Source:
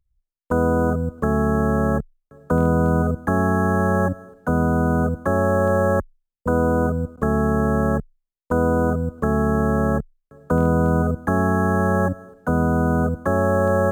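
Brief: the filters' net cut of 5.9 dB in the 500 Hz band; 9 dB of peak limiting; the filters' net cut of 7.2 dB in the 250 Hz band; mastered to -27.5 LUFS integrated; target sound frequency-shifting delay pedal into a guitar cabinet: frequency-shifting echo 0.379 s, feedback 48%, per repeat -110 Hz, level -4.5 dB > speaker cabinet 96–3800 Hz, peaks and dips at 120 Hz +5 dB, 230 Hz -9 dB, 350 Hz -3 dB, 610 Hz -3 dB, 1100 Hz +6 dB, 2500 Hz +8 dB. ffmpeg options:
-filter_complex "[0:a]equalizer=f=250:t=o:g=-3.5,equalizer=f=500:t=o:g=-4,alimiter=limit=-19dB:level=0:latency=1,asplit=7[a][b][c][d][e][f][g];[b]adelay=379,afreqshift=-110,volume=-4.5dB[h];[c]adelay=758,afreqshift=-220,volume=-10.9dB[i];[d]adelay=1137,afreqshift=-330,volume=-17.3dB[j];[e]adelay=1516,afreqshift=-440,volume=-23.6dB[k];[f]adelay=1895,afreqshift=-550,volume=-30dB[l];[g]adelay=2274,afreqshift=-660,volume=-36.4dB[m];[a][h][i][j][k][l][m]amix=inputs=7:normalize=0,highpass=96,equalizer=f=120:t=q:w=4:g=5,equalizer=f=230:t=q:w=4:g=-9,equalizer=f=350:t=q:w=4:g=-3,equalizer=f=610:t=q:w=4:g=-3,equalizer=f=1.1k:t=q:w=4:g=6,equalizer=f=2.5k:t=q:w=4:g=8,lowpass=f=3.8k:w=0.5412,lowpass=f=3.8k:w=1.3066,volume=1dB"

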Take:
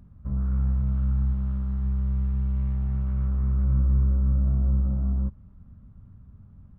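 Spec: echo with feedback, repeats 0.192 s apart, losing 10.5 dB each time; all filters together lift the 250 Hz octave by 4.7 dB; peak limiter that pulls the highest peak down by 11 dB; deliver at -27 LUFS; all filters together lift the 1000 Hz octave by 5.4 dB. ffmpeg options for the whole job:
-af "equalizer=f=250:t=o:g=7,equalizer=f=1k:t=o:g=6.5,alimiter=limit=-24dB:level=0:latency=1,aecho=1:1:192|384|576:0.299|0.0896|0.0269,volume=5.5dB"

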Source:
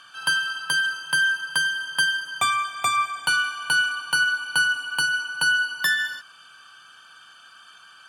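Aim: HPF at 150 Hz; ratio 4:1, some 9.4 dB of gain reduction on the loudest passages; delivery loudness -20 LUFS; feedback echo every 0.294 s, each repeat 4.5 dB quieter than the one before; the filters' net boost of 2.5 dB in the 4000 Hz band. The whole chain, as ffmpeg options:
-af "highpass=150,equalizer=f=4k:t=o:g=3.5,acompressor=threshold=-28dB:ratio=4,aecho=1:1:294|588|882|1176|1470|1764|2058|2352|2646:0.596|0.357|0.214|0.129|0.0772|0.0463|0.0278|0.0167|0.01,volume=7.5dB"

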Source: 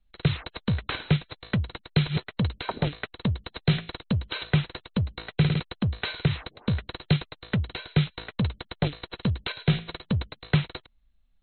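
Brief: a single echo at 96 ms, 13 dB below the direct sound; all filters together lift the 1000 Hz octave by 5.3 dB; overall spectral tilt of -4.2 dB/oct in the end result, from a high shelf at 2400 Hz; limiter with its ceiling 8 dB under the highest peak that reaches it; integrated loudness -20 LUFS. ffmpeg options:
-af "equalizer=f=1k:t=o:g=5.5,highshelf=f=2.4k:g=7,alimiter=limit=-14dB:level=0:latency=1,aecho=1:1:96:0.224,volume=9dB"

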